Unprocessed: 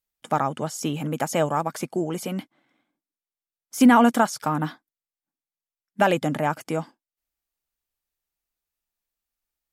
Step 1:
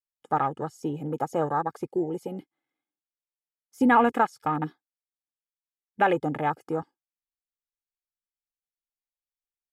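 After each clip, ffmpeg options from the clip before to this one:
-af "afwtdn=0.0316,aecho=1:1:2.4:0.52,volume=0.708"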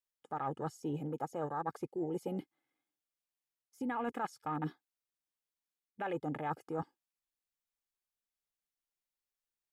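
-af "alimiter=limit=0.168:level=0:latency=1:release=121,areverse,acompressor=threshold=0.02:ratio=10,areverse"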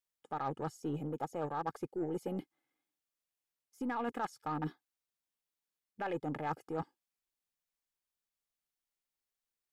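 -af "aeval=exprs='0.075*(cos(1*acos(clip(val(0)/0.075,-1,1)))-cos(1*PI/2))+0.00473*(cos(6*acos(clip(val(0)/0.075,-1,1)))-cos(6*PI/2))+0.00473*(cos(8*acos(clip(val(0)/0.075,-1,1)))-cos(8*PI/2))':c=same"

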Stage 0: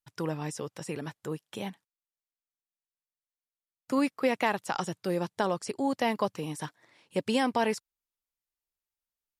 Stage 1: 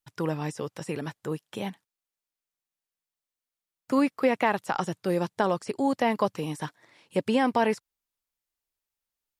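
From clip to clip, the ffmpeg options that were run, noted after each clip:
-filter_complex "[0:a]acrossover=split=2600[s0][s1];[s1]acompressor=threshold=0.00562:ratio=4:attack=1:release=60[s2];[s0][s2]amix=inputs=2:normalize=0,volume=1.5"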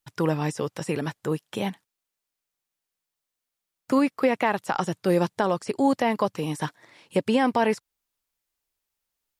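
-af "alimiter=limit=0.15:level=0:latency=1:release=418,volume=1.78"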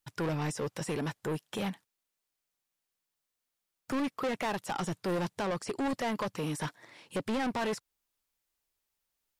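-af "asoftclip=type=tanh:threshold=0.0422,volume=0.891"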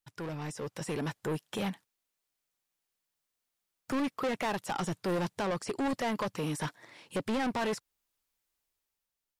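-af "dynaudnorm=f=140:g=11:m=2.24,volume=0.473"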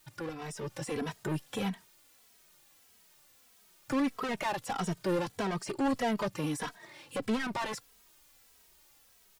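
-filter_complex "[0:a]aeval=exprs='val(0)+0.5*0.00168*sgn(val(0))':c=same,asplit=2[s0][s1];[s1]adelay=2.8,afreqshift=-1.6[s2];[s0][s2]amix=inputs=2:normalize=1,volume=1.33"

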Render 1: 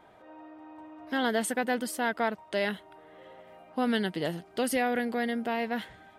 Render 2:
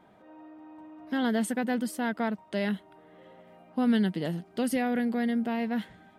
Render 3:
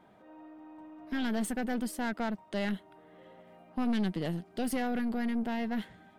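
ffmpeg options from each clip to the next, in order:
-af "equalizer=f=200:w=1.3:g=11,volume=0.631"
-af "aeval=exprs='(tanh(20*val(0)+0.45)-tanh(0.45))/20':c=same"

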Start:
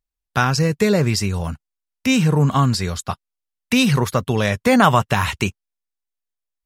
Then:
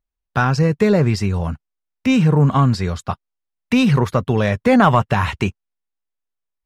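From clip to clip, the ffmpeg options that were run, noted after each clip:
-af "acontrast=21,lowpass=f=1800:p=1,volume=0.794"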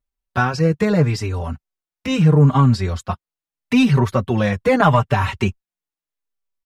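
-filter_complex "[0:a]asplit=2[s0][s1];[s1]adelay=4.6,afreqshift=-0.79[s2];[s0][s2]amix=inputs=2:normalize=1,volume=1.26"

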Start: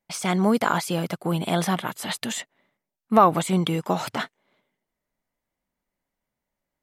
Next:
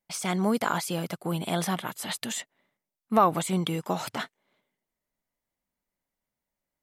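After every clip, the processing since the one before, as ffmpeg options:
-af "highshelf=f=5000:g=5,volume=0.562"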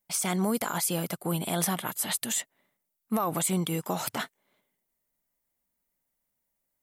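-filter_complex "[0:a]acrossover=split=5900[s0][s1];[s0]alimiter=limit=0.112:level=0:latency=1:release=62[s2];[s1]crystalizer=i=1.5:c=0[s3];[s2][s3]amix=inputs=2:normalize=0"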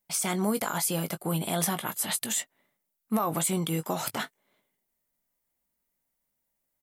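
-filter_complex "[0:a]asplit=2[s0][s1];[s1]adelay=19,volume=0.282[s2];[s0][s2]amix=inputs=2:normalize=0"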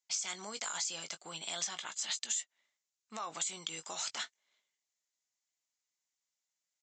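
-af "aderivative,aresample=16000,aresample=44100,acompressor=threshold=0.0126:ratio=6,volume=1.88"

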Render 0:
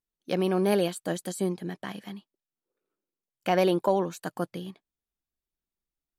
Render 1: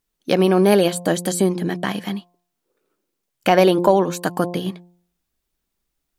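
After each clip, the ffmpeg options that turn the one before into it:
-filter_complex "[0:a]bandreject=f=175.9:t=h:w=4,bandreject=f=351.8:t=h:w=4,bandreject=f=527.7:t=h:w=4,bandreject=f=703.6:t=h:w=4,bandreject=f=879.5:t=h:w=4,bandreject=f=1055.4:t=h:w=4,asplit=2[s0][s1];[s1]acompressor=threshold=0.0251:ratio=6,volume=1.26[s2];[s0][s2]amix=inputs=2:normalize=0,volume=2.24"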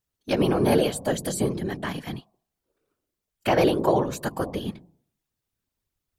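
-af "afftfilt=real='hypot(re,im)*cos(2*PI*random(0))':imag='hypot(re,im)*sin(2*PI*random(1))':win_size=512:overlap=0.75"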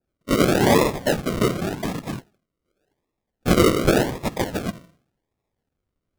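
-af "acrusher=samples=41:mix=1:aa=0.000001:lfo=1:lforange=24.6:lforate=0.88,adynamicequalizer=threshold=0.0178:dfrequency=1700:dqfactor=0.7:tfrequency=1700:tqfactor=0.7:attack=5:release=100:ratio=0.375:range=1.5:mode=cutabove:tftype=highshelf,volume=1.5"

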